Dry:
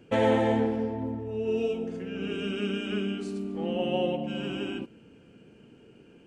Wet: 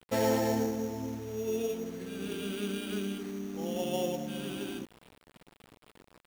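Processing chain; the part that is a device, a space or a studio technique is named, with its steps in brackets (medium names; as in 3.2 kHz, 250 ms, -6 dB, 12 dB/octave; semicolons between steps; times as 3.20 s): early 8-bit sampler (sample-rate reducer 6.2 kHz, jitter 0%; bit crusher 8-bit); trim -4.5 dB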